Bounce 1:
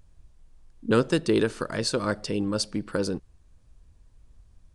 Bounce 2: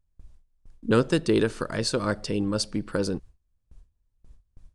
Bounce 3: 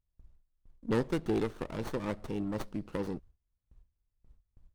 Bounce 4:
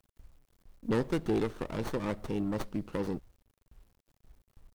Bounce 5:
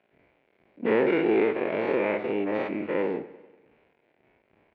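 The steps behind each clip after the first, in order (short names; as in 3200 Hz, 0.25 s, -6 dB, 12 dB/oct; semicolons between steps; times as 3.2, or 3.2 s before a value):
gate with hold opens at -44 dBFS; low shelf 94 Hz +5.5 dB
running maximum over 17 samples; gain -8 dB
in parallel at -2 dB: limiter -26.5 dBFS, peak gain reduction 9 dB; on the sum: added noise brown -72 dBFS; bit-crush 11-bit; gain -2.5 dB
spectral dilation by 0.12 s; speaker cabinet 310–2600 Hz, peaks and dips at 390 Hz +4 dB, 630 Hz +4 dB, 1200 Hz -8 dB, 2300 Hz +9 dB; warbling echo 98 ms, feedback 59%, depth 73 cents, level -16.5 dB; gain +3.5 dB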